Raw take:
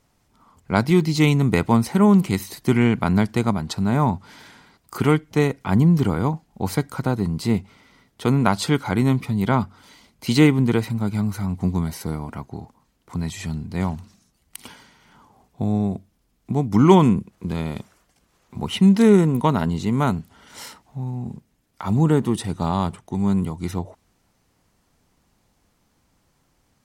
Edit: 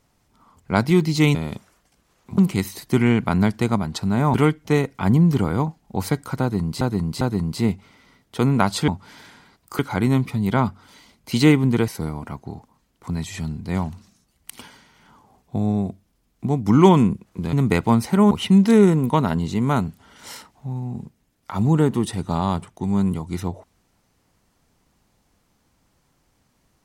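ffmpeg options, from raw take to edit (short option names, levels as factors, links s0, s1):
-filter_complex "[0:a]asplit=11[s0][s1][s2][s3][s4][s5][s6][s7][s8][s9][s10];[s0]atrim=end=1.352[s11];[s1]atrim=start=17.588:end=18.622[s12];[s2]atrim=start=2.128:end=4.092[s13];[s3]atrim=start=4.998:end=7.472[s14];[s4]atrim=start=7.068:end=7.472[s15];[s5]atrim=start=7.068:end=8.742[s16];[s6]atrim=start=4.088:end=5.002[s17];[s7]atrim=start=8.738:end=10.832[s18];[s8]atrim=start=11.938:end=17.592[s19];[s9]atrim=start=1.348:end=2.132[s20];[s10]atrim=start=18.618[s21];[s11][s12]acrossfade=d=0.004:c1=hsin:c2=hsin[s22];[s22][s13]acrossfade=d=0.004:c1=hsin:c2=hsin[s23];[s23][s14]acrossfade=d=0.004:c1=hsin:c2=hsin[s24];[s24][s15]acrossfade=d=0.004:c1=hsin:c2=hsin[s25];[s25][s16]acrossfade=d=0.004:c1=hsin:c2=hsin[s26];[s26][s17]acrossfade=d=0.004:c1=hsin:c2=hsin[s27];[s27][s18]acrossfade=d=0.004:c1=hsin:c2=hsin[s28];[s28][s19]acrossfade=d=0.004:c1=hsin:c2=hsin[s29];[s29][s20]acrossfade=d=0.004:c1=hsin:c2=hsin[s30];[s30][s21]acrossfade=d=0.004:c1=hsin:c2=hsin"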